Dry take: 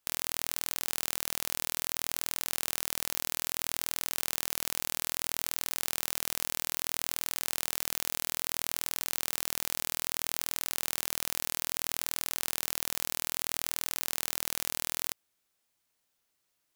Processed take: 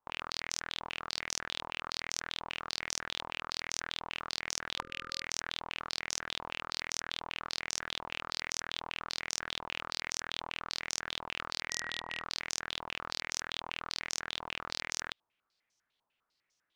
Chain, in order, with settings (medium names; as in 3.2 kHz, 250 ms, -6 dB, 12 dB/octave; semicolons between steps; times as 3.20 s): 4.78–5.24 s: spectral selection erased 550–1200 Hz; 11.70–12.22 s: whistle 1.9 kHz -44 dBFS; step-sequenced low-pass 10 Hz 980–5900 Hz; trim -4 dB